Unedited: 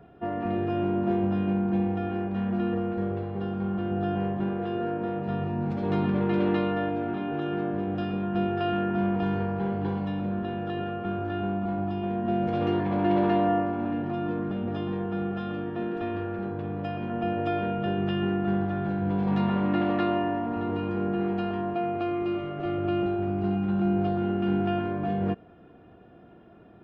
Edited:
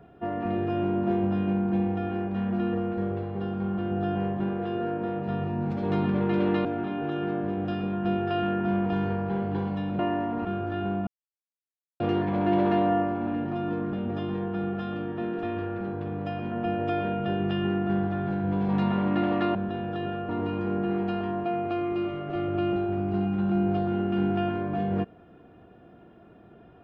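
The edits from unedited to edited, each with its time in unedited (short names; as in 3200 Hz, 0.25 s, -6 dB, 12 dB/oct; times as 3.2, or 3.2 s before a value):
6.65–6.95 cut
10.29–11.03 swap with 20.13–20.59
11.65–12.58 mute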